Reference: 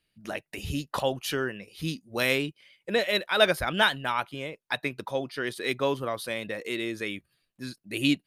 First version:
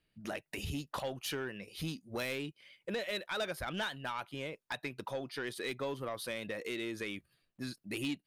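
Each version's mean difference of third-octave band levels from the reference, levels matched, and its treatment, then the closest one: 4.0 dB: compressor 2.5:1, threshold -38 dBFS, peak gain reduction 15.5 dB; soft clip -30 dBFS, distortion -15 dB; mismatched tape noise reduction decoder only; gain +1 dB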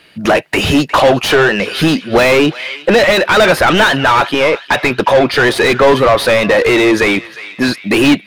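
7.0 dB: in parallel at +3 dB: compressor, threshold -34 dBFS, peak gain reduction 18 dB; on the sum: overdrive pedal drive 32 dB, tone 1300 Hz, clips at -5 dBFS; narrowing echo 0.359 s, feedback 57%, band-pass 2800 Hz, level -14 dB; gain +6 dB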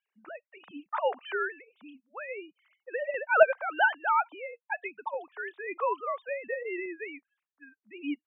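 18.0 dB: sine-wave speech; band-pass 1100 Hz, Q 1.6; random-step tremolo, depth 70%; gain +8.5 dB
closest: first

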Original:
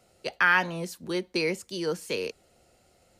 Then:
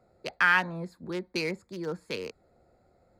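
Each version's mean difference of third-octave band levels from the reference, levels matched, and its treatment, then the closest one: 4.0 dB: Wiener smoothing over 15 samples; dynamic EQ 450 Hz, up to -5 dB, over -42 dBFS, Q 0.98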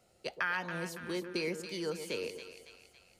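6.5 dB: compressor 2.5:1, threshold -27 dBFS, peak gain reduction 7.5 dB; on a send: split-band echo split 980 Hz, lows 0.122 s, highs 0.279 s, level -9 dB; on the sum: gain -5.5 dB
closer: first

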